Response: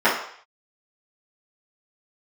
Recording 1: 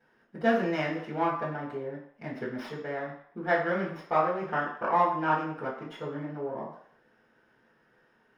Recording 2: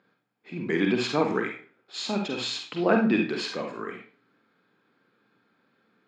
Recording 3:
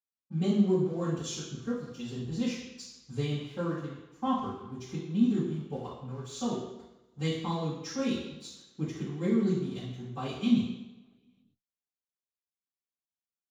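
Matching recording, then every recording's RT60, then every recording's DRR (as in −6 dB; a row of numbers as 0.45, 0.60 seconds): 1; 0.60, 0.40, 1.0 seconds; −13.0, 1.5, −16.5 decibels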